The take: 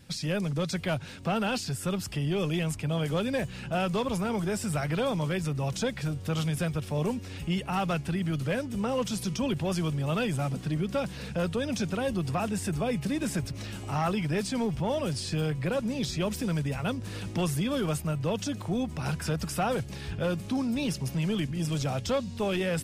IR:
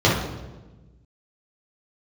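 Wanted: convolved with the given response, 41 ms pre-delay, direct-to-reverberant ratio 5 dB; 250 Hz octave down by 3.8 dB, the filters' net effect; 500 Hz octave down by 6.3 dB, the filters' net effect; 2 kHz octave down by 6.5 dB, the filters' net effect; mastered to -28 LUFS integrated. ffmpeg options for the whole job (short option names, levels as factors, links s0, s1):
-filter_complex "[0:a]equalizer=f=250:t=o:g=-4.5,equalizer=f=500:t=o:g=-6,equalizer=f=2000:t=o:g=-9,asplit=2[s0][s1];[1:a]atrim=start_sample=2205,adelay=41[s2];[s1][s2]afir=irnorm=-1:irlink=0,volume=0.0501[s3];[s0][s3]amix=inputs=2:normalize=0,volume=1.12"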